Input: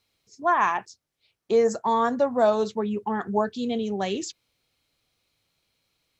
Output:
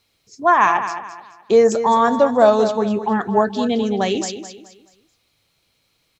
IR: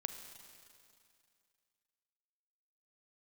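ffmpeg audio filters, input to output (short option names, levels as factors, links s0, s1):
-af "aecho=1:1:214|428|642|856:0.299|0.0985|0.0325|0.0107,volume=2.37"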